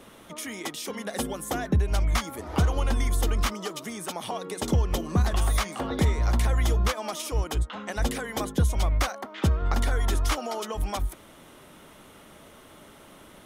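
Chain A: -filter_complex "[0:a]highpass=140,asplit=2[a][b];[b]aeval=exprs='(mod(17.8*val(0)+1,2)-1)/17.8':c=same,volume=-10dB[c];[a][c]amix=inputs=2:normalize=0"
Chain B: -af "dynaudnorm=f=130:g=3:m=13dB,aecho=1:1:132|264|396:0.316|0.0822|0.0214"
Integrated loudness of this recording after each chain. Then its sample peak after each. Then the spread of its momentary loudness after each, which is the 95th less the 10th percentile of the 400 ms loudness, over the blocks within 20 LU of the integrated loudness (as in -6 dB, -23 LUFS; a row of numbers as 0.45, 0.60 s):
-30.5, -16.0 LUFS; -13.0, -1.0 dBFS; 19, 8 LU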